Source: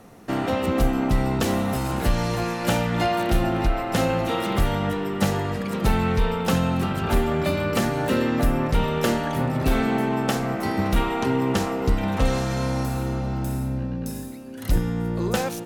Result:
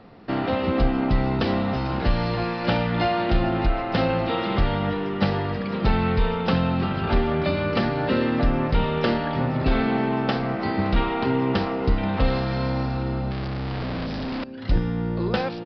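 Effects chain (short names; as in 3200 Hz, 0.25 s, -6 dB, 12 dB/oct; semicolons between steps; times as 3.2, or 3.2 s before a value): 13.31–14.44 infinite clipping; downsampling 11025 Hz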